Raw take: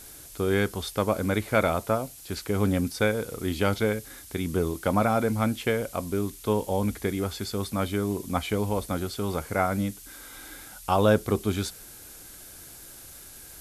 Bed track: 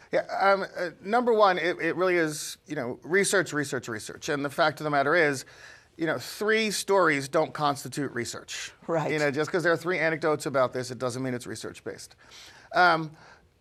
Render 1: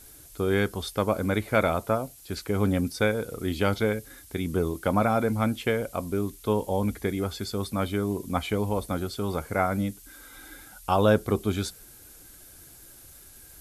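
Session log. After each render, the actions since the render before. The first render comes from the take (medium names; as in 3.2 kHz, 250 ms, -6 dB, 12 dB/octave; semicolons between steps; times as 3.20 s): noise reduction 6 dB, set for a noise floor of -46 dBFS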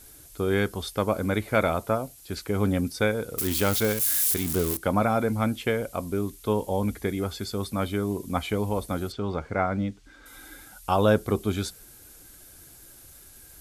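3.38–4.77 s: zero-crossing glitches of -19 dBFS; 9.12–10.26 s: distance through air 140 m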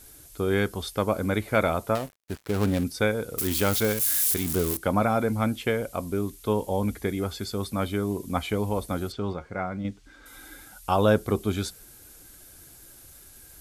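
1.95–2.84 s: dead-time distortion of 0.18 ms; 9.33–9.85 s: feedback comb 180 Hz, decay 0.16 s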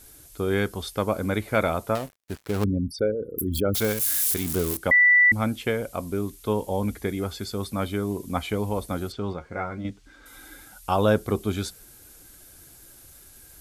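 2.64–3.75 s: resonances exaggerated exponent 3; 4.91–5.32 s: bleep 1.97 kHz -13 dBFS; 9.50–9.90 s: doubling 13 ms -5.5 dB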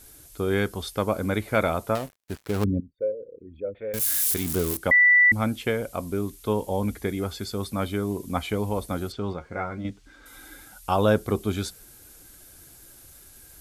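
2.80–3.94 s: cascade formant filter e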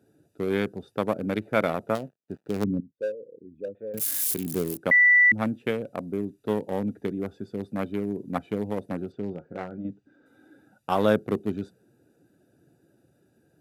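local Wiener filter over 41 samples; high-pass 130 Hz 24 dB/octave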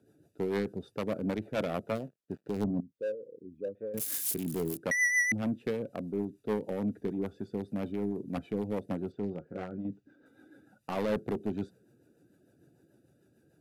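saturation -23 dBFS, distortion -8 dB; rotary cabinet horn 6.7 Hz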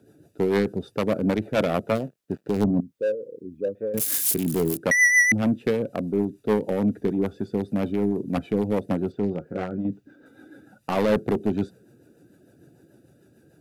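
trim +9.5 dB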